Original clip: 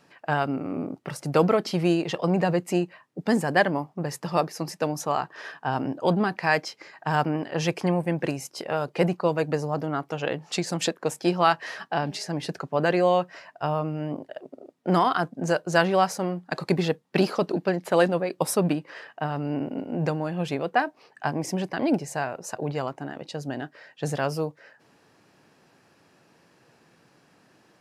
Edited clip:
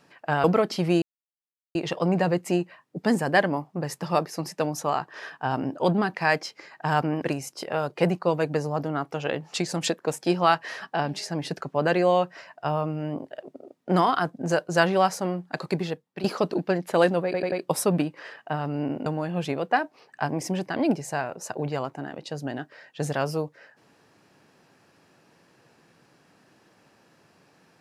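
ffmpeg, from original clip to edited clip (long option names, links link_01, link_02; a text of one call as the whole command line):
ffmpeg -i in.wav -filter_complex "[0:a]asplit=9[link_01][link_02][link_03][link_04][link_05][link_06][link_07][link_08][link_09];[link_01]atrim=end=0.442[link_10];[link_02]atrim=start=1.388:end=1.97,asetpts=PTS-STARTPTS,afade=type=out:start_time=0.578:duration=0.004:curve=hsin,apad=pad_dur=0.73[link_11];[link_03]atrim=start=1.97:end=7.442,asetpts=PTS-STARTPTS,afade=type=in:duration=0.004:curve=hsin[link_12];[link_04]atrim=start=8.198:end=17.22,asetpts=PTS-STARTPTS,afade=type=out:start_time=8.222:duration=0.8:silence=0.16788[link_13];[link_05]atrim=start=17.22:end=18.322,asetpts=PTS-STARTPTS,afade=type=in:duration=0.004:curve=hsin:silence=0.16788[link_14];[link_06]atrim=start=18.228:end=18.322[link_15];[link_07]atrim=start=18.228:end=18.322[link_16];[link_08]atrim=start=18.228:end=19.772[link_17];[link_09]atrim=start=20.088[link_18];[link_11][link_12]concat=n=2:v=0:a=1[link_19];[link_10][link_19]acrossfade=duration=0.004:curve1=hsin:curve2=hsin[link_20];[link_13][link_14]concat=n=2:v=0:a=1[link_21];[link_20][link_21]acrossfade=duration=0.004:curve1=hsin:curve2=hsin[link_22];[link_22][link_15]acrossfade=duration=0.004:curve1=hsin:curve2=hsin[link_23];[link_23][link_16]acrossfade=duration=0.004:curve1=hsin:curve2=hsin[link_24];[link_24][link_17]acrossfade=duration=0.004:curve1=hsin:curve2=hsin[link_25];[link_25][link_18]acrossfade=duration=0.004:curve1=hsin:curve2=hsin" out.wav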